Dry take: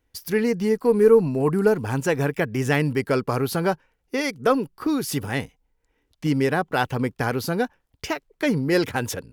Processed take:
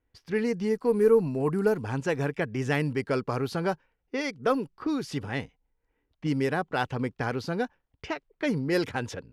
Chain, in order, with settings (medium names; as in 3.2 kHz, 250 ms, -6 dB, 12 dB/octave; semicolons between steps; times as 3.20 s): level-controlled noise filter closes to 2.4 kHz, open at -14.5 dBFS; trim -5.5 dB